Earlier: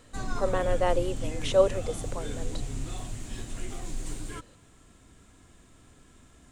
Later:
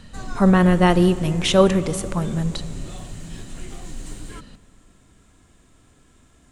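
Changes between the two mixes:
speech: remove four-pole ladder high-pass 450 Hz, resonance 65%
reverb: on, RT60 2.8 s

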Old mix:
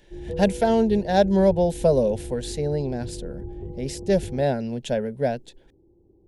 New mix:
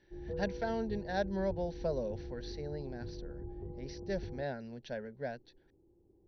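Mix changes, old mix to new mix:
speech −8.0 dB
master: add Chebyshev low-pass with heavy ripple 6,000 Hz, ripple 9 dB

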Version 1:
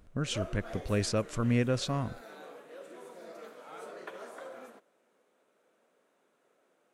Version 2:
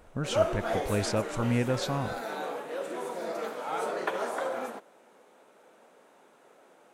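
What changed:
background +12.0 dB
master: add parametric band 850 Hz +7 dB 0.39 octaves

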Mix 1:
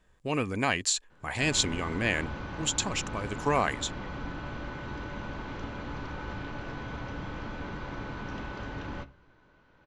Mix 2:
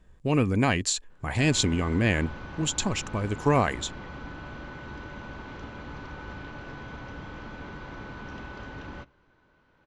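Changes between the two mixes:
speech: add low-shelf EQ 380 Hz +11 dB
background: send −11.5 dB

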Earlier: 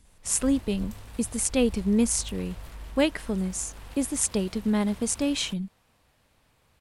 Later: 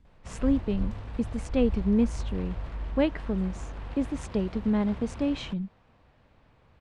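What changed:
background +7.0 dB
master: add head-to-tape spacing loss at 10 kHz 30 dB

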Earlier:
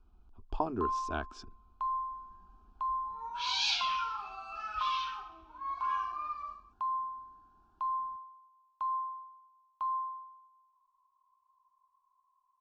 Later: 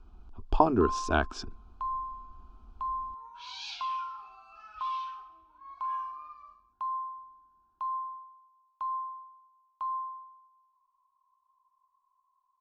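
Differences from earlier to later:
speech +10.0 dB
second sound −10.5 dB

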